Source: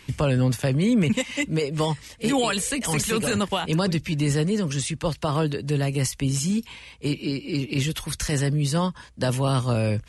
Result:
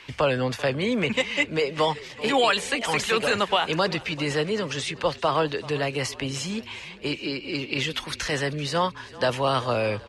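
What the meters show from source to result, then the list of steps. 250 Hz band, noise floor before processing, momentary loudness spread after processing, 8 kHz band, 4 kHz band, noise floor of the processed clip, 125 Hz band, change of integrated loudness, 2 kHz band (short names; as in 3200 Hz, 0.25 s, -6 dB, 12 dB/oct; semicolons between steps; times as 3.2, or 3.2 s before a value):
-6.0 dB, -49 dBFS, 7 LU, -6.5 dB, +3.5 dB, -44 dBFS, -9.5 dB, -1.0 dB, +5.0 dB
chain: three-band isolator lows -15 dB, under 410 Hz, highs -18 dB, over 5000 Hz; frequency-shifting echo 0.387 s, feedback 53%, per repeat -30 Hz, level -19 dB; gain +5 dB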